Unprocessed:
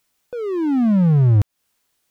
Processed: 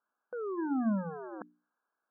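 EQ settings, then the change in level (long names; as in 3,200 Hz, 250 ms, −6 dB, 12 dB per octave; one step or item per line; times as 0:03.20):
linear-phase brick-wall band-pass 190–1,700 Hz
parametric band 300 Hz −13 dB 3 octaves
mains-hum notches 60/120/180/240/300/360 Hz
0.0 dB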